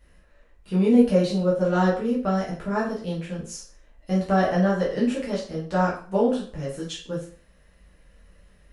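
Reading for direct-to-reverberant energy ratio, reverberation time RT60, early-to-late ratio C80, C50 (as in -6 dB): -7.0 dB, 0.45 s, 11.0 dB, 5.5 dB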